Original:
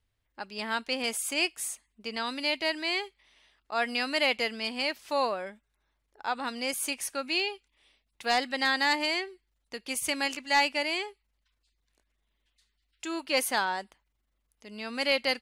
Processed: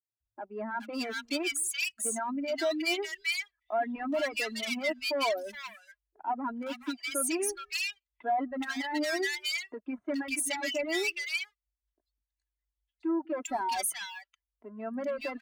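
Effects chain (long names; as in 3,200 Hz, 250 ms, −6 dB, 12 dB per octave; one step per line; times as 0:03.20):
expanding power law on the bin magnitudes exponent 2
leveller curve on the samples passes 2
soft clipping −23 dBFS, distortion −14 dB
reverb reduction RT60 0.78 s
high-pass filter 63 Hz 12 dB per octave
comb filter 3 ms, depth 66%
three-band delay without the direct sound mids, lows, highs 200/420 ms, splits 160/1,500 Hz
level −3.5 dB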